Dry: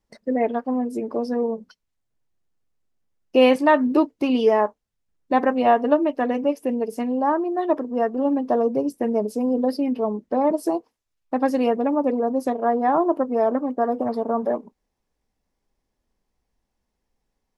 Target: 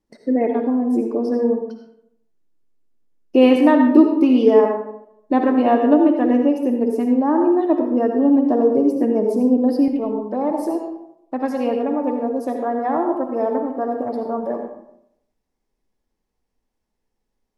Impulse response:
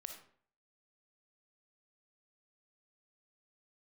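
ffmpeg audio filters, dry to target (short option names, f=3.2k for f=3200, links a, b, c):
-filter_complex "[0:a]asetnsamples=n=441:p=0,asendcmd='9.88 equalizer g 3',equalizer=f=300:t=o:w=1.1:g=11.5[a];[1:a]atrim=start_sample=2205,asetrate=29988,aresample=44100[b];[a][b]afir=irnorm=-1:irlink=0"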